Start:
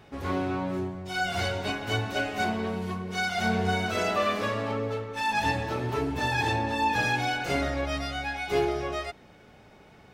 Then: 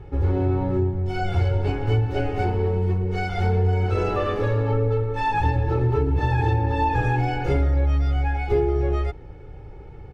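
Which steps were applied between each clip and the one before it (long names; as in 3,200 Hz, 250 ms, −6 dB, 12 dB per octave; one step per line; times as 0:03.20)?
spectral tilt −4.5 dB per octave
comb filter 2.3 ms, depth 83%
downward compressor 5 to 1, threshold −17 dBFS, peak gain reduction 7.5 dB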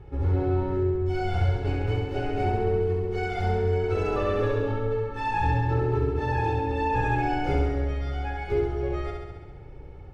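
flutter between parallel walls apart 11.6 metres, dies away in 1.2 s
level −5.5 dB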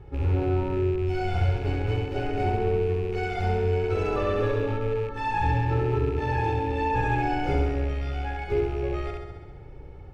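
loose part that buzzes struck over −32 dBFS, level −35 dBFS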